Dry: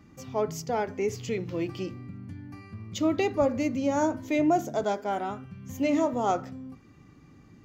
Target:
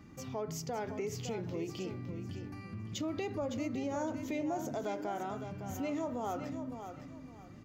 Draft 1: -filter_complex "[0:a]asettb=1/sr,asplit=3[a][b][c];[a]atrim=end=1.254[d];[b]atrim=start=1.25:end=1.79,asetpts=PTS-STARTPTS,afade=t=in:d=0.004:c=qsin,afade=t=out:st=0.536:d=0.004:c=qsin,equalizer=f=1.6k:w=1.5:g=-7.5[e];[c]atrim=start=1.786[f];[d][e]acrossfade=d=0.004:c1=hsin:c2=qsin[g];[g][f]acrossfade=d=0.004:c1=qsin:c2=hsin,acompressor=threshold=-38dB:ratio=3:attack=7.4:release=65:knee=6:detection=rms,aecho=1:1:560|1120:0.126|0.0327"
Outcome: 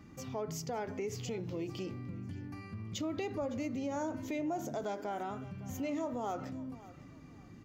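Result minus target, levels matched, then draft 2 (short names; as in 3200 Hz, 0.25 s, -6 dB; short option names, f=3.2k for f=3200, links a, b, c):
echo-to-direct -9.5 dB
-filter_complex "[0:a]asettb=1/sr,asplit=3[a][b][c];[a]atrim=end=1.254[d];[b]atrim=start=1.25:end=1.79,asetpts=PTS-STARTPTS,afade=t=in:d=0.004:c=qsin,afade=t=out:st=0.536:d=0.004:c=qsin,equalizer=f=1.6k:w=1.5:g=-7.5[e];[c]atrim=start=1.786[f];[d][e]acrossfade=d=0.004:c1=hsin:c2=qsin[g];[g][f]acrossfade=d=0.004:c1=qsin:c2=hsin,acompressor=threshold=-38dB:ratio=3:attack=7.4:release=65:knee=6:detection=rms,aecho=1:1:560|1120|1680:0.376|0.0977|0.0254"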